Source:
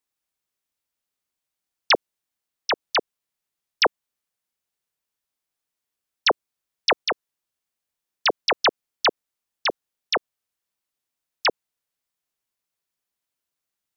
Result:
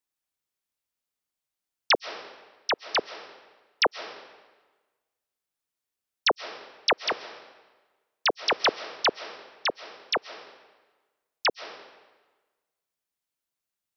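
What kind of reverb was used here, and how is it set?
algorithmic reverb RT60 1.3 s, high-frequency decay 0.85×, pre-delay 95 ms, DRR 13.5 dB; trim -3.5 dB

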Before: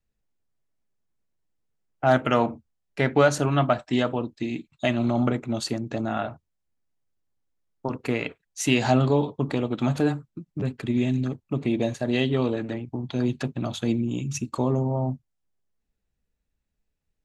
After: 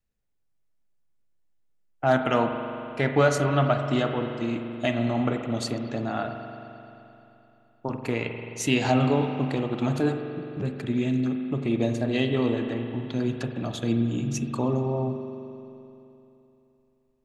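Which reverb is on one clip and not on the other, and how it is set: spring tank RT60 3.1 s, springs 43 ms, chirp 70 ms, DRR 5 dB; trim -2 dB

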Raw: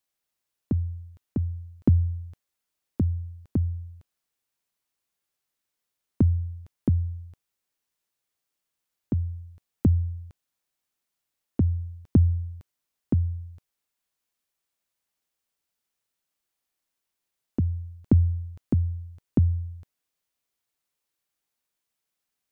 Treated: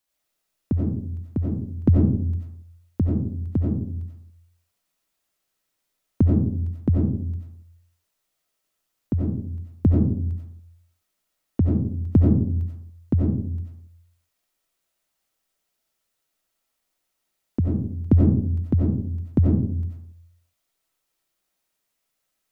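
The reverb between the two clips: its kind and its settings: algorithmic reverb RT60 0.61 s, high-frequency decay 0.3×, pre-delay 50 ms, DRR -3 dB; trim +2 dB

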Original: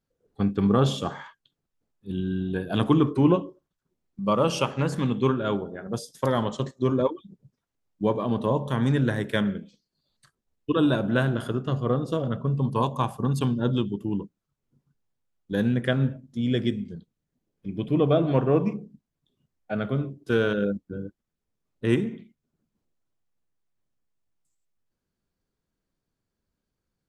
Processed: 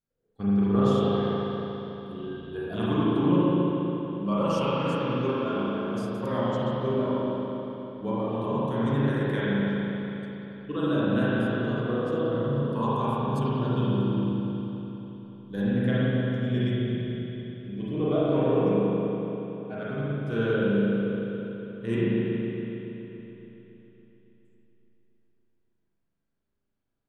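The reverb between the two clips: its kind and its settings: spring tank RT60 3.7 s, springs 35/40 ms, chirp 60 ms, DRR -9.5 dB; trim -11 dB

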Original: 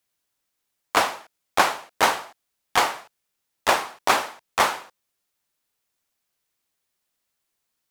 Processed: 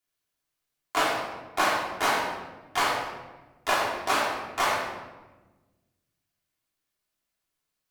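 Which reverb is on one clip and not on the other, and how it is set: simulated room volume 740 m³, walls mixed, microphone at 3.2 m; trim -10.5 dB

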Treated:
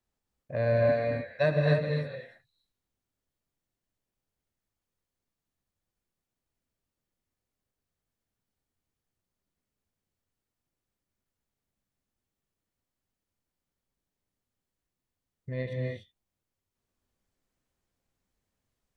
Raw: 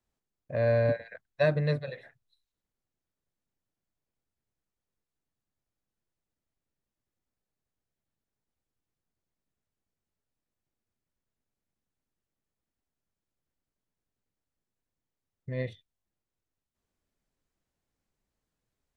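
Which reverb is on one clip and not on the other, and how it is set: gated-style reverb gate 320 ms rising, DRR 0 dB; trim -1 dB

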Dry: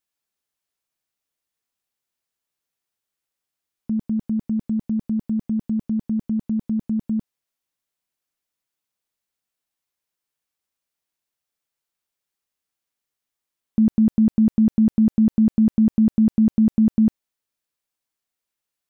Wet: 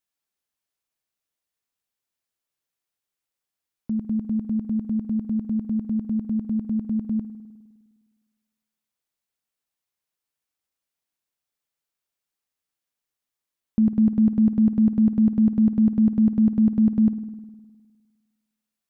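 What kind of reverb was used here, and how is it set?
spring tank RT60 1.5 s, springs 51 ms, chirp 60 ms, DRR 12.5 dB; trim -2.5 dB

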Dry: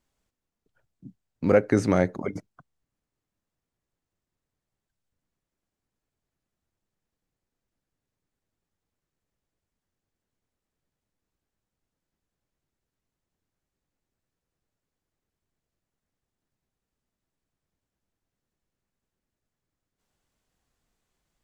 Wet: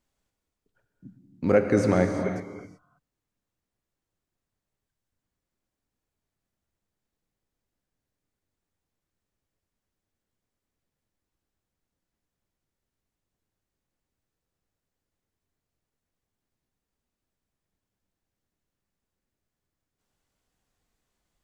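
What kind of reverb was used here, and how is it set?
gated-style reverb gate 400 ms flat, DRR 4.5 dB; trim -1.5 dB

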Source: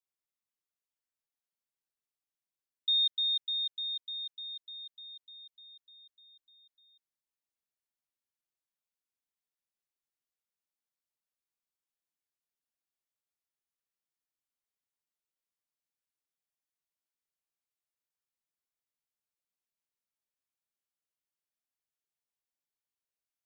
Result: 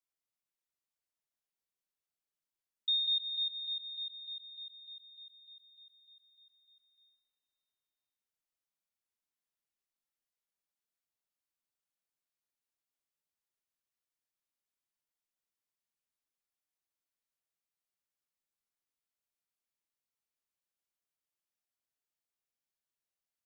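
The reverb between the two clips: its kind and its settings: algorithmic reverb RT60 1.9 s, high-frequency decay 0.95×, pre-delay 45 ms, DRR 6 dB; trim -2.5 dB

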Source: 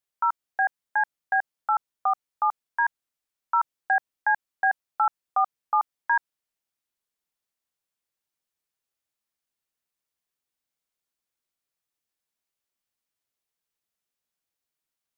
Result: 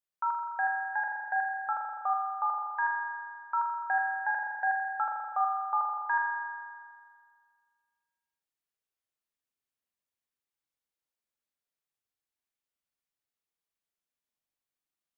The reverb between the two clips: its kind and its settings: spring tank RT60 1.9 s, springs 40 ms, chirp 25 ms, DRR 1 dB; trim -7.5 dB

